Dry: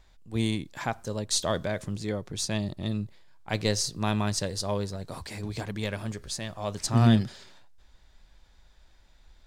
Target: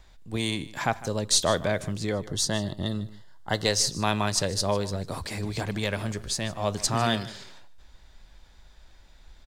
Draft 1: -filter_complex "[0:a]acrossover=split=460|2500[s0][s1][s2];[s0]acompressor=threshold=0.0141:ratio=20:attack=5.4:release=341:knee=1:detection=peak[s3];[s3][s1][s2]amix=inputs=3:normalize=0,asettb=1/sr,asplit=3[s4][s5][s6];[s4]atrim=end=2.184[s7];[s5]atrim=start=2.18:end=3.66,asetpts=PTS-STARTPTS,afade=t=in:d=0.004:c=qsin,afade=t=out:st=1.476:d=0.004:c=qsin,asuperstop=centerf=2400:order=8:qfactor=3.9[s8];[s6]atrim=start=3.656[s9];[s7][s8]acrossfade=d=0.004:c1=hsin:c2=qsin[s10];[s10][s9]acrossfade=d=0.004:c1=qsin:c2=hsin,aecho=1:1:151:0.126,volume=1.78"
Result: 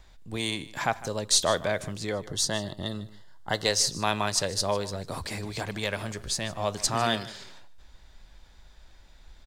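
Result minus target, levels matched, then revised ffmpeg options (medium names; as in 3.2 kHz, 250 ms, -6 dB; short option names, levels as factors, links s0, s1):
compression: peak gain reduction +5.5 dB
-filter_complex "[0:a]acrossover=split=460|2500[s0][s1][s2];[s0]acompressor=threshold=0.0282:ratio=20:attack=5.4:release=341:knee=1:detection=peak[s3];[s3][s1][s2]amix=inputs=3:normalize=0,asettb=1/sr,asplit=3[s4][s5][s6];[s4]atrim=end=2.184[s7];[s5]atrim=start=2.18:end=3.66,asetpts=PTS-STARTPTS,afade=t=in:d=0.004:c=qsin,afade=t=out:st=1.476:d=0.004:c=qsin,asuperstop=centerf=2400:order=8:qfactor=3.9[s8];[s6]atrim=start=3.656[s9];[s7][s8]acrossfade=d=0.004:c1=hsin:c2=qsin[s10];[s10][s9]acrossfade=d=0.004:c1=qsin:c2=hsin,aecho=1:1:151:0.126,volume=1.78"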